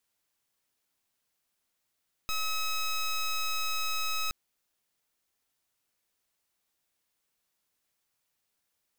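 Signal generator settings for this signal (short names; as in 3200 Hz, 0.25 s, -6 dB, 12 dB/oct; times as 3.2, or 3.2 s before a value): pulse 1280 Hz, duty 13% -30 dBFS 2.02 s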